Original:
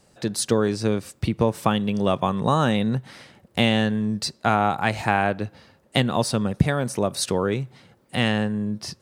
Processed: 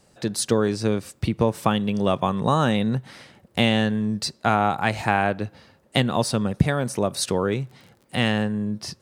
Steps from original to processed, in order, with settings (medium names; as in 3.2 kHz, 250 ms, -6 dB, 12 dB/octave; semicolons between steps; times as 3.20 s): 7.51–8.41 s: crackle 25 per s -> 100 per s -39 dBFS